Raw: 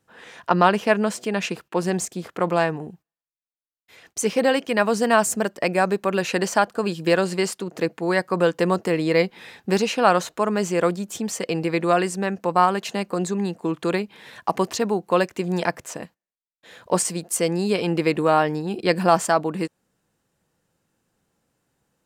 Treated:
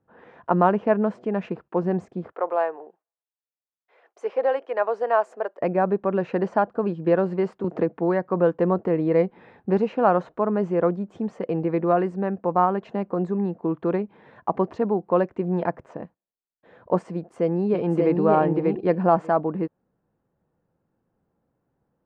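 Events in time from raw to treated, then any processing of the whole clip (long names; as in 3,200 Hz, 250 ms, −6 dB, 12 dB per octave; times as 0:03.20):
0:02.32–0:05.61: high-pass filter 460 Hz 24 dB per octave
0:07.64–0:08.31: multiband upward and downward compressor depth 70%
0:17.14–0:18.17: delay throw 590 ms, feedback 10%, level −2 dB
whole clip: low-pass filter 1,000 Hz 12 dB per octave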